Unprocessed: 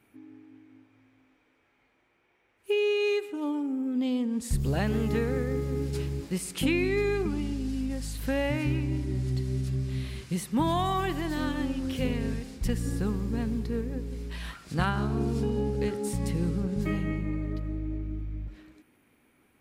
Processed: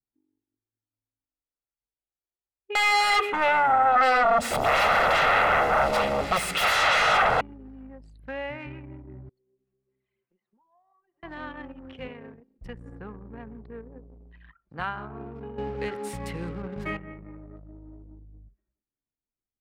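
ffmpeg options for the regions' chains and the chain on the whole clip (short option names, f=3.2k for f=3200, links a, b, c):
-filter_complex "[0:a]asettb=1/sr,asplit=3[a][b][c];[a]atrim=end=2.754[d];[b]atrim=start=2.75:end=7.41,asetpts=PTS-STARTPTS,afade=t=in:d=0.004:c=qsin,afade=t=out:st=4.656:d=0.004:c=qsin,aeval=exprs='0.168*sin(PI/2*8.91*val(0)/0.168)':c=same,aecho=1:1:1.5:0.5,atrim=end_sample=205506[e];[c]atrim=start=7.406[f];[d][e]acrossfade=d=0.004:c1=hsin:c2=qsin[g];[g][f]acrossfade=d=0.004:c1=qsin:c2=hsin,asettb=1/sr,asplit=3[h][i][j];[h]atrim=end=9.294[k];[i]atrim=start=9.29:end=11.23,asetpts=PTS-STARTPTS,afade=t=in:d=0.004:c=qsin,afade=t=out:st=1.936:d=0.004:c=qsin,highpass=390,lowpass=5.4k,acompressor=threshold=-44dB:ratio=8:attack=3.2:release=140:knee=1:detection=peak[l];[j]atrim=start=11.226[m];[k][l]acrossfade=d=0.004:c1=hsin:c2=qsin[n];[n][m]acrossfade=d=0.004:c1=qsin:c2=hsin,asettb=1/sr,asplit=3[o][p][q];[o]atrim=end=12.084[r];[p]atrim=start=12.08:end=12.59,asetpts=PTS-STARTPTS,afade=t=in:d=0.004:c=qsin,afade=t=out:st=0.506:d=0.004:c=qsin,highpass=140,equalizer=f=200:w=6:g=-4.5[s];[q]atrim=start=12.586[t];[r][s]acrossfade=d=0.004:c1=hsin:c2=qsin[u];[u][t]acrossfade=d=0.004:c1=qsin:c2=hsin,asettb=1/sr,asplit=3[v][w][x];[v]atrim=end=15.584[y];[w]atrim=start=15.58:end=16.97,asetpts=PTS-STARTPTS,afade=t=in:d=0.004:c=qsin,afade=t=out:st=1.386:d=0.004:c=qsin,highshelf=f=5k:g=7,acontrast=80,aeval=exprs='sgn(val(0))*max(abs(val(0))-0.00501,0)':c=same[z];[x]atrim=start=16.966[aa];[y][z]acrossfade=d=0.004:c1=hsin:c2=qsin[ab];[ab][aa]acrossfade=d=0.004:c1=qsin:c2=hsin,anlmdn=6.31,acrossover=split=560 3100:gain=0.2 1 0.141[ac][ad][ae];[ac][ad][ae]amix=inputs=3:normalize=0"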